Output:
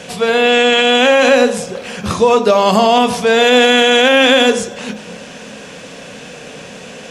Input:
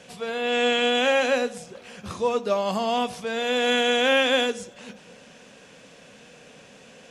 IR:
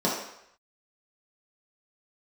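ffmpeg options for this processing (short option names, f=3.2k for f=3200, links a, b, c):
-filter_complex "[0:a]asplit=2[a][b];[1:a]atrim=start_sample=2205,adelay=24[c];[b][c]afir=irnorm=-1:irlink=0,volume=-26dB[d];[a][d]amix=inputs=2:normalize=0,alimiter=level_in=17dB:limit=-1dB:release=50:level=0:latency=1,volume=-1dB"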